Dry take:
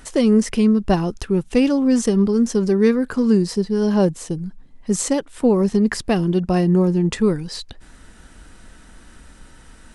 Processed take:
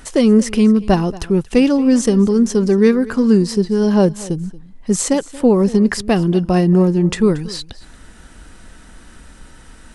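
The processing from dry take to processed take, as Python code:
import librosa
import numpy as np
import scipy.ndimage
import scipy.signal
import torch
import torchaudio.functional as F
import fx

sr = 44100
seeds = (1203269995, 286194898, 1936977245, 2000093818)

y = x + 10.0 ** (-19.5 / 20.0) * np.pad(x, (int(230 * sr / 1000.0), 0))[:len(x)]
y = y * librosa.db_to_amplitude(3.5)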